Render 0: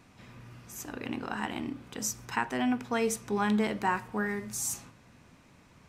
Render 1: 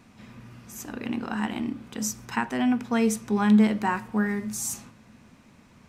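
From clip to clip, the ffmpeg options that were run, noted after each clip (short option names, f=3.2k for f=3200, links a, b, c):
-af "equalizer=f=220:t=o:w=0.25:g=10.5,volume=2dB"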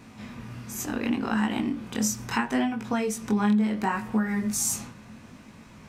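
-af "acompressor=threshold=-28dB:ratio=8,flanger=delay=18:depth=6.5:speed=0.71,volume=9dB"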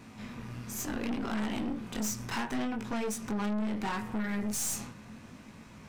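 -af "aeval=exprs='(tanh(31.6*val(0)+0.5)-tanh(0.5))/31.6':c=same"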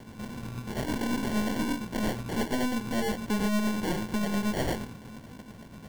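-af "acrusher=samples=35:mix=1:aa=0.000001,tremolo=f=8.7:d=0.38,volume=6dB"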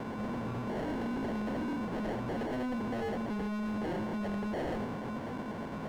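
-filter_complex "[0:a]asplit=2[a][b];[b]highpass=f=720:p=1,volume=33dB,asoftclip=type=tanh:threshold=-20.5dB[c];[a][c]amix=inputs=2:normalize=0,lowpass=f=1k:p=1,volume=-6dB,asoftclip=type=hard:threshold=-27.5dB,volume=-5dB"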